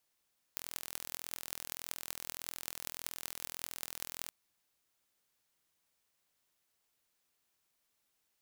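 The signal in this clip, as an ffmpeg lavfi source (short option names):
-f lavfi -i "aevalsrc='0.335*eq(mod(n,1058),0)*(0.5+0.5*eq(mod(n,8464),0))':d=3.74:s=44100"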